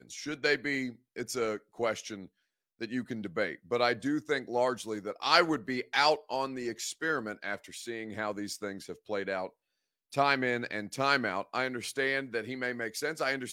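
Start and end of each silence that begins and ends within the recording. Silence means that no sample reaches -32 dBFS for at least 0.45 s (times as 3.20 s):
2.15–2.82 s
9.47–10.13 s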